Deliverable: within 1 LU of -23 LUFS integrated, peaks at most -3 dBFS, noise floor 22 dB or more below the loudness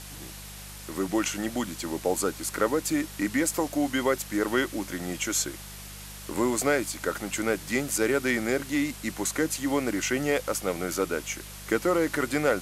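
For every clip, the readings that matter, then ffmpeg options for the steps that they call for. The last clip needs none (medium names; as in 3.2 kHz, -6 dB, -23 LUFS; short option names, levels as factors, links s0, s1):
hum 50 Hz; highest harmonic 200 Hz; hum level -43 dBFS; noise floor -42 dBFS; noise floor target -50 dBFS; loudness -28.0 LUFS; peak level -9.5 dBFS; loudness target -23.0 LUFS
-> -af "bandreject=f=50:t=h:w=4,bandreject=f=100:t=h:w=4,bandreject=f=150:t=h:w=4,bandreject=f=200:t=h:w=4"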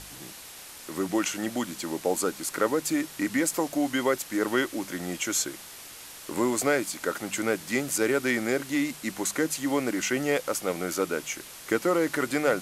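hum not found; noise floor -45 dBFS; noise floor target -50 dBFS
-> -af "afftdn=nr=6:nf=-45"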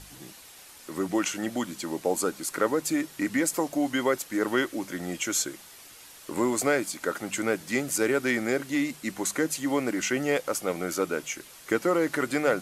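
noise floor -49 dBFS; noise floor target -50 dBFS
-> -af "afftdn=nr=6:nf=-49"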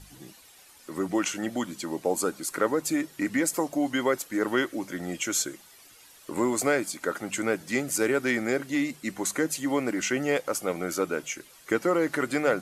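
noise floor -54 dBFS; loudness -28.0 LUFS; peak level -9.5 dBFS; loudness target -23.0 LUFS
-> -af "volume=1.78"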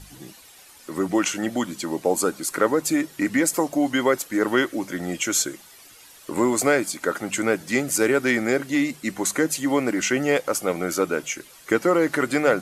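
loudness -23.0 LUFS; peak level -4.5 dBFS; noise floor -49 dBFS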